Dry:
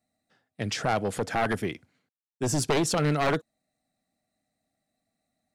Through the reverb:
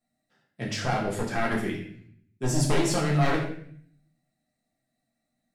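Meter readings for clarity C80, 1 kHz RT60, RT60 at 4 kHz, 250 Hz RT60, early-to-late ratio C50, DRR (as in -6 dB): 8.0 dB, 0.55 s, 0.55 s, 0.90 s, 5.0 dB, -4.0 dB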